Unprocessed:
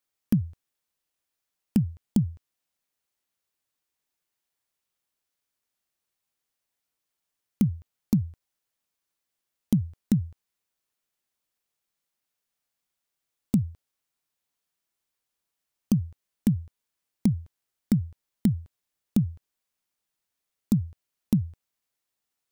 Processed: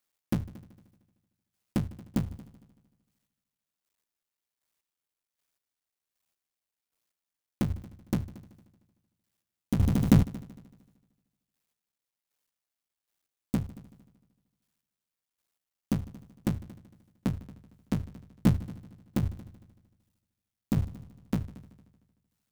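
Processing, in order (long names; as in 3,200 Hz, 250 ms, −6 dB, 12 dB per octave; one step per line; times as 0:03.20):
sub-harmonics by changed cycles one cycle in 3, muted
in parallel at −11 dB: comparator with hysteresis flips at −32 dBFS
on the sum: square-wave tremolo 1.3 Hz, depth 60%, duty 25%
echo machine with several playback heads 76 ms, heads all three, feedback 44%, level −22.5 dB
0:09.79–0:10.23: envelope flattener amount 70%
level +3 dB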